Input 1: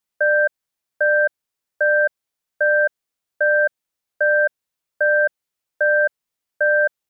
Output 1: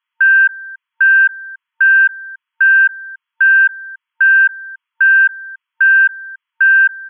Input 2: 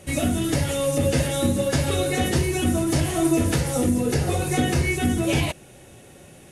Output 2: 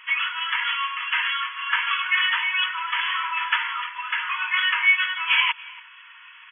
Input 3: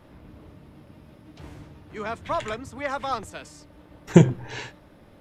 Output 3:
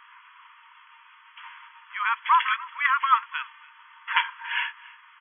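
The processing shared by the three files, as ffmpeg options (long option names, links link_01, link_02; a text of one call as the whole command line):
ffmpeg -i in.wav -filter_complex "[0:a]aecho=1:1:283:0.0841,asplit=2[link_01][link_02];[link_02]asoftclip=type=hard:threshold=-14dB,volume=-10dB[link_03];[link_01][link_03]amix=inputs=2:normalize=0,afftfilt=real='re*between(b*sr/4096,910,3400)':imag='im*between(b*sr/4096,910,3400)':win_size=4096:overlap=0.75,volume=8.5dB" out.wav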